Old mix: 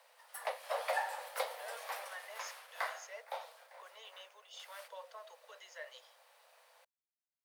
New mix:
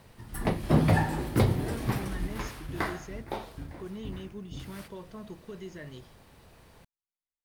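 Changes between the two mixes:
background +5.0 dB; master: remove steep high-pass 500 Hz 96 dB/octave

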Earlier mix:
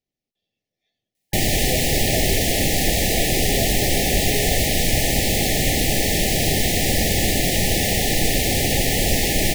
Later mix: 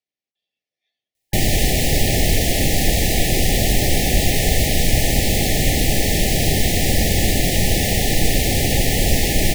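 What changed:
speech: add band-pass filter 2.3 kHz, Q 0.51; master: add bass shelf 160 Hz +5.5 dB

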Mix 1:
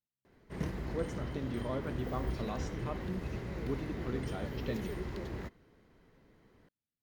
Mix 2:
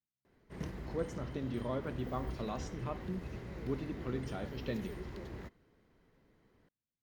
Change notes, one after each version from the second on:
background -5.0 dB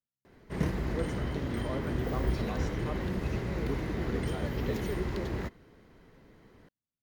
background +11.5 dB

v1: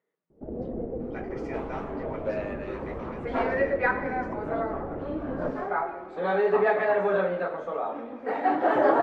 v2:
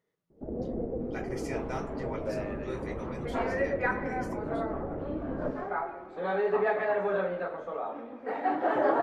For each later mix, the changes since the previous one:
speech: remove band-pass 240–2700 Hz; first sound: add distance through air 250 m; second sound -4.5 dB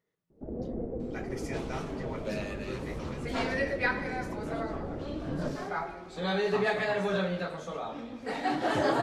second sound: remove three-band isolator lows -18 dB, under 250 Hz, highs -24 dB, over 2.1 kHz; master: add peaking EQ 610 Hz -3 dB 2.3 oct

